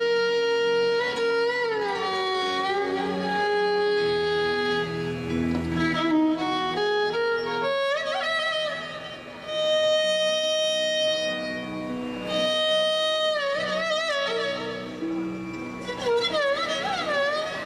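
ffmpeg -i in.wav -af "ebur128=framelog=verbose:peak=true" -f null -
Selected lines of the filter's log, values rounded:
Integrated loudness:
  I:         -24.8 LUFS
  Threshold: -34.8 LUFS
Loudness range:
  LRA:         2.5 LU
  Threshold: -44.9 LUFS
  LRA low:   -26.6 LUFS
  LRA high:  -24.1 LUFS
True peak:
  Peak:      -12.9 dBFS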